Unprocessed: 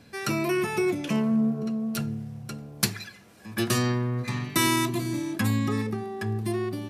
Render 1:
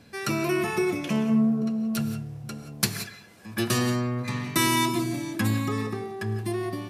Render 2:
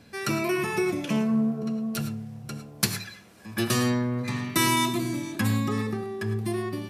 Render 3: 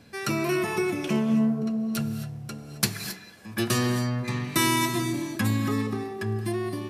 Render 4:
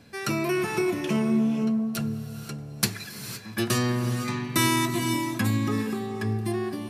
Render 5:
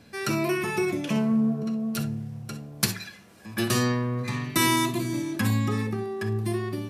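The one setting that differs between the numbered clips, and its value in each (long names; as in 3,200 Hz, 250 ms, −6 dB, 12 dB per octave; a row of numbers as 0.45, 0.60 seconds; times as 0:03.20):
reverb whose tail is shaped and stops, gate: 200, 130, 290, 540, 80 milliseconds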